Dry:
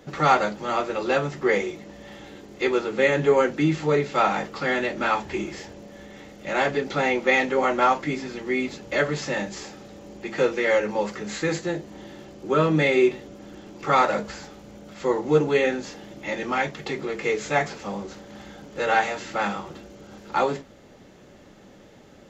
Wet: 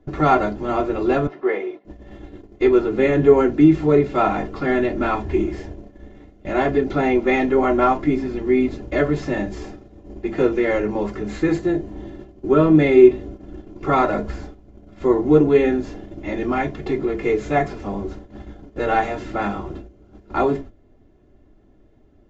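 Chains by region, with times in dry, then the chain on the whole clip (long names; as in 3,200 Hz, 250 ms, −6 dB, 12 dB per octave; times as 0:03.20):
0:01.27–0:01.85: high-pass filter 490 Hz + high-frequency loss of the air 240 metres
whole clip: noise gate −41 dBFS, range −14 dB; spectral tilt −4 dB per octave; comb filter 2.9 ms, depth 60%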